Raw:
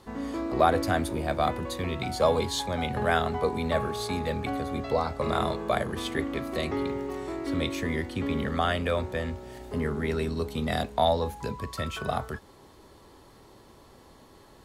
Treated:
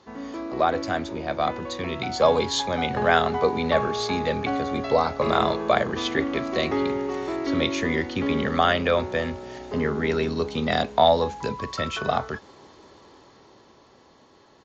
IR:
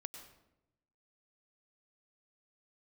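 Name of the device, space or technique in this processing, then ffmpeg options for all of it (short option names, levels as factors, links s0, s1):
Bluetooth headset: -af "highpass=f=200:p=1,dynaudnorm=f=210:g=17:m=2.24,aresample=16000,aresample=44100" -ar 16000 -c:a sbc -b:a 64k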